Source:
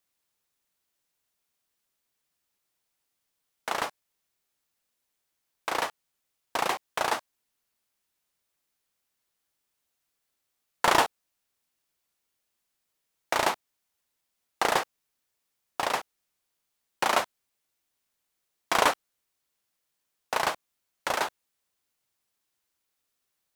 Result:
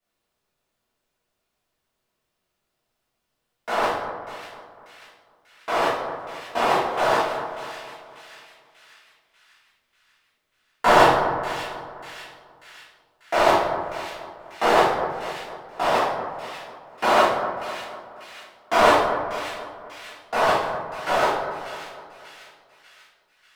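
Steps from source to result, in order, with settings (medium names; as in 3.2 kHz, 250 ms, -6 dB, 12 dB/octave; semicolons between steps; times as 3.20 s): treble shelf 3.3 kHz -11.5 dB; two-band feedback delay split 1.8 kHz, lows 248 ms, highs 591 ms, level -10 dB; reverberation RT60 0.85 s, pre-delay 3 ms, DRR -13.5 dB; trim -4.5 dB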